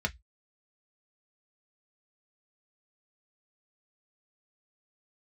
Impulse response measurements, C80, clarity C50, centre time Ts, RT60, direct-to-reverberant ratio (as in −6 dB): 39.5 dB, 26.5 dB, 5 ms, 0.10 s, 3.0 dB